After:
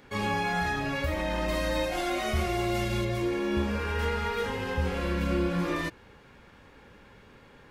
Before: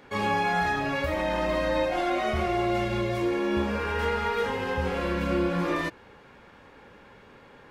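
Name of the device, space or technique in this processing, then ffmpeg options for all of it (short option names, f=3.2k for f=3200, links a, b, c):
smiley-face EQ: -filter_complex "[0:a]lowshelf=f=120:g=7,equalizer=f=750:t=o:w=1.9:g=-3,highshelf=f=5.2k:g=5,asettb=1/sr,asplit=3[a][b][c];[a]atrim=end=1.484[d];[b]atrim=start=1.48:end=3.05,asetpts=PTS-STARTPTS,afade=t=in:d=0.004:c=qsin,afade=t=out:st=1.566:d=0.004:c=qsin,aemphasis=mode=production:type=cd[e];[c]atrim=start=3.046[f];[d][e]acrossfade=d=0.004:c1=hsin:c2=qsin[g];[g][f]acrossfade=d=0.004:c1=qsin:c2=hsin,volume=-2dB"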